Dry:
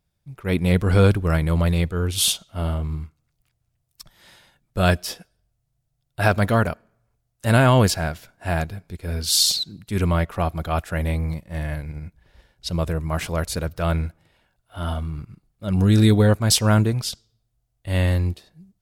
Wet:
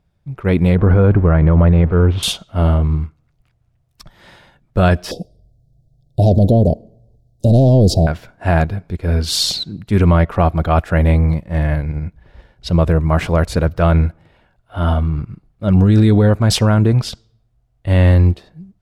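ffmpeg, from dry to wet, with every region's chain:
ffmpeg -i in.wav -filter_complex "[0:a]asettb=1/sr,asplit=3[link_01][link_02][link_03];[link_01]atrim=end=0.754[link_04];[link_02]atrim=start=0.75:end=2.23,asetpts=PTS-STARTPTS,afade=type=in:duration=0.004:curve=qsin,afade=type=out:start_time=1.476:duration=0.004:curve=qsin,aeval=exprs='val(0)+0.5*0.0211*sgn(val(0))':channel_layout=same,lowpass=1700[link_05];[link_03]atrim=start=2.226[link_06];[link_04][link_05]acrossfade=duration=0.004:curve1=hsin:curve2=qsin[link_07];[link_07][link_06]acrossfade=duration=0.004:curve1=qsin:curve2=hsin,asettb=1/sr,asplit=3[link_08][link_09][link_10];[link_08]atrim=end=5.114[link_11];[link_09]atrim=start=5.11:end=8.07,asetpts=PTS-STARTPTS,afade=type=in:duration=0.004:curve=qsin,afade=type=out:start_time=2.956:duration=0.004:curve=qsin,equalizer=frequency=10000:width=0.36:gain=-5.5,aeval=exprs='0.531*sin(PI/2*1.58*val(0)/0.531)':channel_layout=same,asuperstop=centerf=1600:order=8:qfactor=0.5[link_12];[link_10]atrim=start=8.066[link_13];[link_11][link_12]acrossfade=duration=0.004:curve1=hsin:curve2=qsin[link_14];[link_14][link_13]acrossfade=duration=0.004:curve1=qsin:curve2=hsin,lowpass=frequency=1500:poles=1,alimiter=level_in=14.5dB:limit=-1dB:release=50:level=0:latency=1,volume=-3.5dB" out.wav

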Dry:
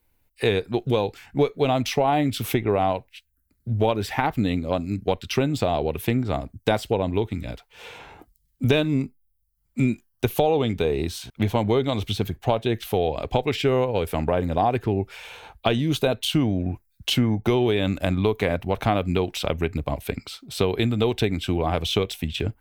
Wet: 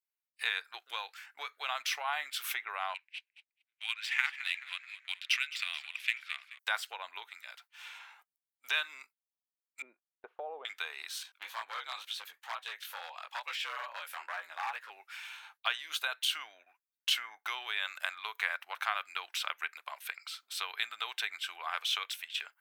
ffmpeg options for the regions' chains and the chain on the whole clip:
ffmpeg -i in.wav -filter_complex "[0:a]asettb=1/sr,asplit=3[link_01][link_02][link_03];[link_01]atrim=end=2.944[link_04];[link_02]atrim=start=2.94:end=6.59,asetpts=PTS-STARTPTS,afade=type=in:duration=0.004:curve=qsin,afade=type=out:start_time=3.646:duration=0.004:curve=qsin,highpass=frequency=2400:width_type=q:width=2.5,adynamicsmooth=sensitivity=5:basefreq=4300,asplit=6[link_05][link_06][link_07][link_08][link_09][link_10];[link_06]adelay=215,afreqshift=-50,volume=-15dB[link_11];[link_07]adelay=430,afreqshift=-100,volume=-20.7dB[link_12];[link_08]adelay=645,afreqshift=-150,volume=-26.4dB[link_13];[link_09]adelay=860,afreqshift=-200,volume=-32dB[link_14];[link_10]adelay=1075,afreqshift=-250,volume=-37.7dB[link_15];[link_05][link_11][link_12][link_13][link_14][link_15]amix=inputs=6:normalize=0,atrim=end_sample=160965[link_16];[link_03]atrim=start=6.586[link_17];[link_04][link_16]acrossfade=duration=0.004:curve1=hsin:curve2=qsin[link_18];[link_18][link_17]acrossfade=duration=0.004:curve1=qsin:curve2=hsin,asettb=1/sr,asplit=3[link_19][link_20][link_21];[link_19]atrim=end=9.824[link_22];[link_20]atrim=start=9.82:end=10.65,asetpts=PTS-STARTPTS,afade=type=in:duration=0.004:curve=qsin,afade=type=out:start_time=0.826:duration=0.004:curve=qsin,lowpass=frequency=520:width_type=q:width=1.8,equalizer=frequency=230:width_type=o:width=2.5:gain=7[link_23];[link_21]atrim=start=10.646[link_24];[link_22][link_23]acrossfade=duration=0.004:curve1=hsin:curve2=qsin[link_25];[link_25][link_24]acrossfade=duration=0.004:curve1=qsin:curve2=hsin,asettb=1/sr,asplit=3[link_26][link_27][link_28];[link_26]atrim=end=11.234[link_29];[link_27]atrim=start=11.23:end=14.9,asetpts=PTS-STARTPTS,afade=type=in:duration=0.004:curve=qsin,afade=type=out:start_time=3.666:duration=0.004:curve=qsin,flanger=delay=16.5:depth=6.5:speed=2.2,asoftclip=type=hard:threshold=-19.5dB,afreqshift=82[link_30];[link_28]atrim=start=14.896[link_31];[link_29][link_30]acrossfade=duration=0.004:curve1=hsin:curve2=qsin[link_32];[link_32][link_31]acrossfade=duration=0.004:curve1=qsin:curve2=hsin,adynamicequalizer=threshold=0.00794:dfrequency=1500:dqfactor=1.7:tfrequency=1500:tqfactor=1.7:attack=5:release=100:ratio=0.375:range=3.5:mode=boostabove:tftype=bell,highpass=frequency=1100:width=0.5412,highpass=frequency=1100:width=1.3066,agate=range=-17dB:threshold=-54dB:ratio=16:detection=peak,volume=-5.5dB" out.wav

